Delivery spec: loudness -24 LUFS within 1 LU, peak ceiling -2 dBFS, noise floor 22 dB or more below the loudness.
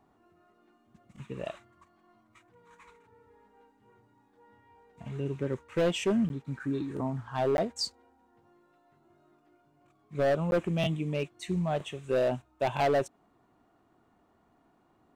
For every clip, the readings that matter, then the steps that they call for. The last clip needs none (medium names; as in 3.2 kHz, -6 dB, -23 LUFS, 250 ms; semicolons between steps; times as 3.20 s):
clipped samples 1.4%; clipping level -22.0 dBFS; dropouts 3; longest dropout 11 ms; loudness -31.0 LUFS; peak level -22.0 dBFS; loudness target -24.0 LUFS
-> clip repair -22 dBFS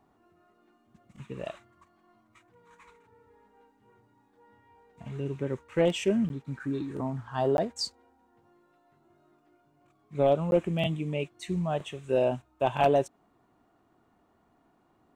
clipped samples 0.0%; dropouts 3; longest dropout 11 ms
-> interpolate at 6.29/7.57/10.51 s, 11 ms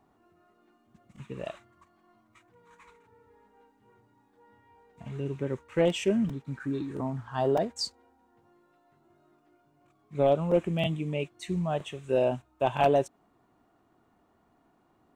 dropouts 0; loudness -29.5 LUFS; peak level -13.0 dBFS; loudness target -24.0 LUFS
-> trim +5.5 dB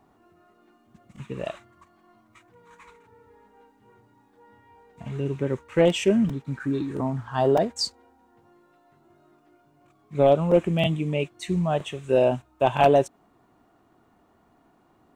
loudness -24.0 LUFS; peak level -7.5 dBFS; noise floor -62 dBFS